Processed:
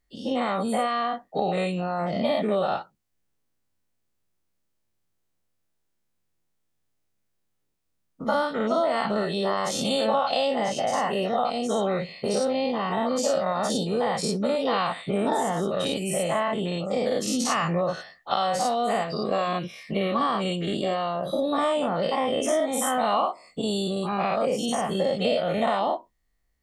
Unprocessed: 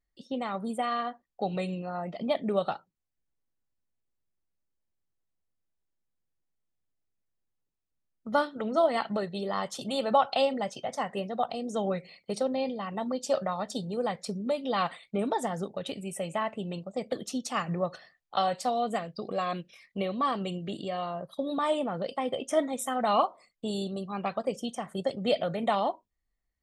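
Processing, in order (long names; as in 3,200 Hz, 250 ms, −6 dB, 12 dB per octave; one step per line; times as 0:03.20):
every bin's largest magnitude spread in time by 120 ms
downward compressor 4 to 1, threshold −26 dBFS, peak gain reduction 11 dB
level +4.5 dB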